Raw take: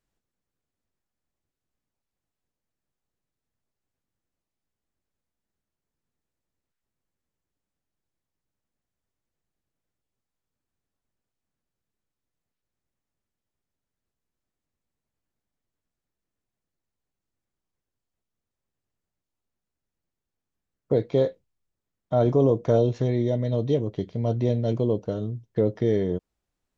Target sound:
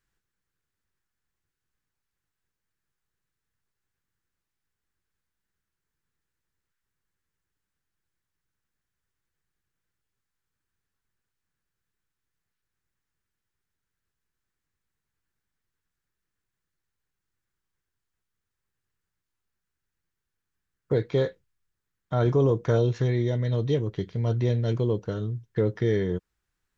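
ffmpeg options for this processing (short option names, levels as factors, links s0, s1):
-af "equalizer=f=250:t=o:w=0.67:g=-7,equalizer=f=630:t=o:w=0.67:g=-10,equalizer=f=1600:t=o:w=0.67:g=7,volume=1.26"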